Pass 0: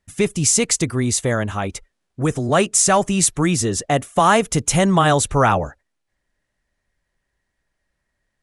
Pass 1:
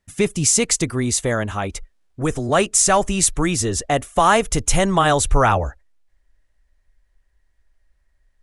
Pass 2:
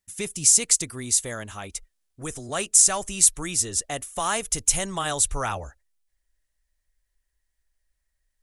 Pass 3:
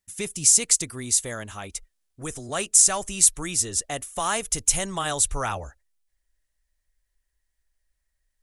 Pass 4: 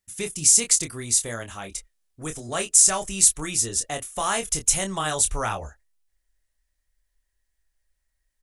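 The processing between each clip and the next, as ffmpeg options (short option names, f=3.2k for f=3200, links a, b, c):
-af "asubboost=boost=9.5:cutoff=51"
-af "crystalizer=i=4.5:c=0,volume=-14dB"
-af anull
-filter_complex "[0:a]asplit=2[a][b];[b]adelay=26,volume=-7dB[c];[a][c]amix=inputs=2:normalize=0"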